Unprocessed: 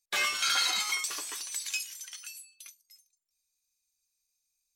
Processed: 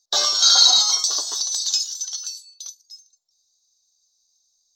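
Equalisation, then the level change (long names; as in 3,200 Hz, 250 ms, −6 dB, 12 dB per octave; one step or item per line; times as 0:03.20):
drawn EQ curve 300 Hz 0 dB, 710 Hz +11 dB, 1,500 Hz −2 dB, 2,400 Hz −20 dB, 3,800 Hz +14 dB, 6,300 Hz +14 dB, 10,000 Hz −18 dB, 14,000 Hz −3 dB
+3.0 dB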